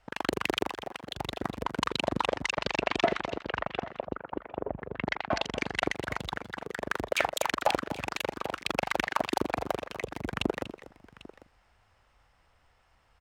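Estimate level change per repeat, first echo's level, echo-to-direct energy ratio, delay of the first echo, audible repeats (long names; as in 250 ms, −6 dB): repeats not evenly spaced, −14.5 dB, −13.5 dB, 241 ms, 2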